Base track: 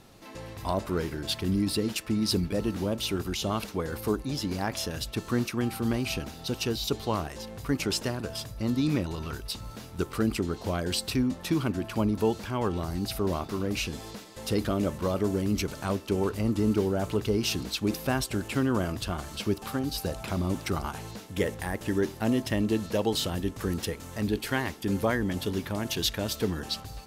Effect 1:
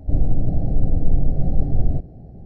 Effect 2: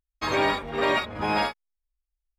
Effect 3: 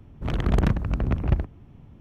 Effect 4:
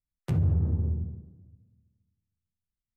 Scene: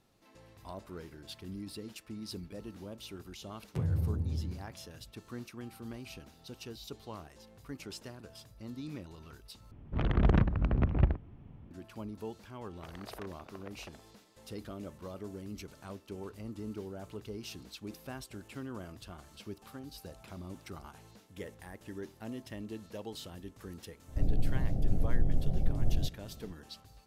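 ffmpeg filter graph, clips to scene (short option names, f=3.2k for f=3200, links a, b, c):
-filter_complex "[3:a]asplit=2[a][b];[0:a]volume=-16dB[c];[a]lowpass=3.5k[d];[b]highpass=f=460:w=0.5412,highpass=f=460:w=1.3066[e];[c]asplit=2[f][g];[f]atrim=end=9.714[h];[d]atrim=end=2,asetpts=PTS-STARTPTS,volume=-4dB[i];[g]atrim=start=11.706[j];[4:a]atrim=end=2.96,asetpts=PTS-STARTPTS,volume=-6.5dB,afade=t=in:d=0.004:c=hsin,afade=t=out:st=2.956:d=0.004:c=hsin,adelay=3470[k];[e]atrim=end=2,asetpts=PTS-STARTPTS,volume=-16dB,afade=t=in:d=0.004:c=hsin,afade=t=out:st=1.996:d=0.004:c=hsin,adelay=12550[l];[1:a]atrim=end=2.45,asetpts=PTS-STARTPTS,volume=-10.5dB,afade=t=in:d=0.004:c=hsin,afade=t=out:st=2.446:d=0.004:c=hsin,adelay=24080[m];[h][i]acrossfade=d=0.004:c1=hsin:c2=hsin[n];[n][j]acrossfade=d=0.004:c1=hsin:c2=hsin[o];[o][k][l][m]amix=inputs=4:normalize=0"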